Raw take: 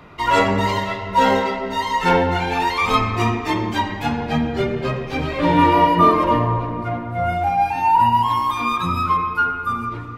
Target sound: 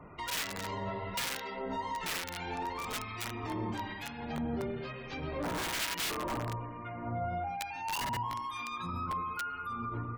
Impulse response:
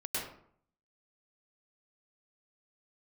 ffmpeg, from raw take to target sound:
-filter_complex "[0:a]asplit=2[s0][s1];[1:a]atrim=start_sample=2205,asetrate=43218,aresample=44100[s2];[s1][s2]afir=irnorm=-1:irlink=0,volume=0.133[s3];[s0][s3]amix=inputs=2:normalize=0,aeval=exprs='(mod(2.99*val(0)+1,2)-1)/2.99':c=same,alimiter=limit=0.1:level=0:latency=1:release=141,afftfilt=real='re*gte(hypot(re,im),0.00501)':imag='im*gte(hypot(re,im),0.00501)':win_size=1024:overlap=0.75,acrossover=split=1400[s4][s5];[s4]aeval=exprs='val(0)*(1-0.7/2+0.7/2*cos(2*PI*1.1*n/s))':c=same[s6];[s5]aeval=exprs='val(0)*(1-0.7/2-0.7/2*cos(2*PI*1.1*n/s))':c=same[s7];[s6][s7]amix=inputs=2:normalize=0,volume=0.473"

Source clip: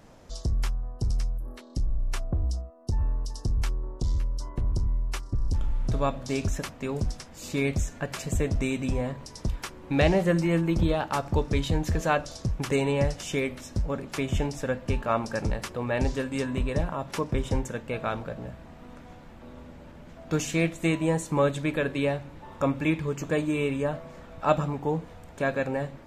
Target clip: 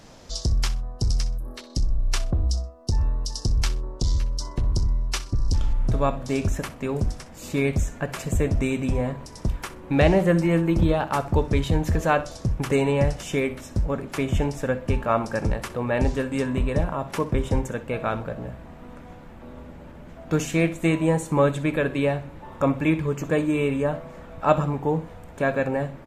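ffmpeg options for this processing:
-af "asetnsamples=n=441:p=0,asendcmd='5.73 equalizer g -5.5',equalizer=f=4900:w=0.81:g=8.5,aecho=1:1:63|126:0.158|0.0365,volume=1.58"

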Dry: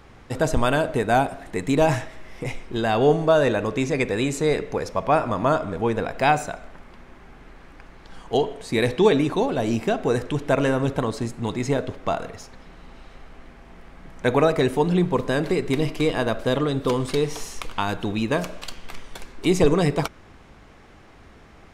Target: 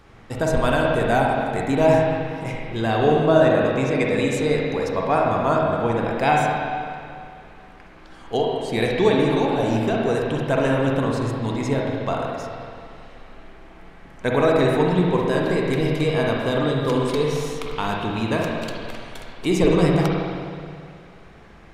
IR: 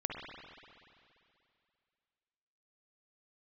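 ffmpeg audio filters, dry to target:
-filter_complex "[1:a]atrim=start_sample=2205,asetrate=48510,aresample=44100[s0];[0:a][s0]afir=irnorm=-1:irlink=0,asplit=3[s1][s2][s3];[s1]afade=t=out:st=1.64:d=0.02[s4];[s2]adynamicequalizer=threshold=0.0126:dfrequency=3300:dqfactor=0.7:tfrequency=3300:tqfactor=0.7:attack=5:release=100:ratio=0.375:range=1.5:mode=cutabove:tftype=highshelf,afade=t=in:st=1.64:d=0.02,afade=t=out:st=4:d=0.02[s5];[s3]afade=t=in:st=4:d=0.02[s6];[s4][s5][s6]amix=inputs=3:normalize=0"

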